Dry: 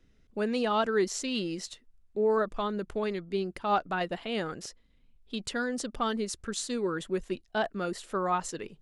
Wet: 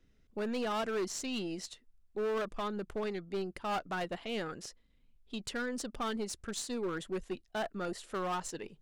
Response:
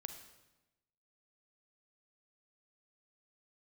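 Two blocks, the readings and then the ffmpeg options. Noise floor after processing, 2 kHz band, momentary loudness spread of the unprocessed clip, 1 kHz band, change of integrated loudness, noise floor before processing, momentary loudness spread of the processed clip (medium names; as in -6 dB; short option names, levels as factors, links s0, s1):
-68 dBFS, -5.0 dB, 11 LU, -7.0 dB, -6.0 dB, -63 dBFS, 9 LU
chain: -af "aeval=exprs='0.178*(cos(1*acos(clip(val(0)/0.178,-1,1)))-cos(1*PI/2))+0.0447*(cos(2*acos(clip(val(0)/0.178,-1,1)))-cos(2*PI/2))+0.00708*(cos(6*acos(clip(val(0)/0.178,-1,1)))-cos(6*PI/2))':c=same,asoftclip=type=hard:threshold=0.0501,volume=0.631"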